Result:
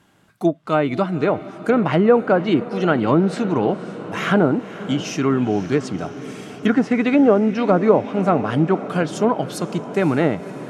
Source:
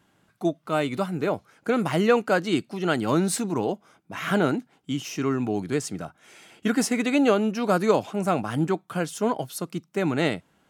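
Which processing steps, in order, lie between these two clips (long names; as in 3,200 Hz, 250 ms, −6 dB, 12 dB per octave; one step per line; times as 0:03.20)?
treble cut that deepens with the level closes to 970 Hz, closed at −17 dBFS
feedback delay with all-pass diffusion 533 ms, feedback 69%, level −15 dB
level +6.5 dB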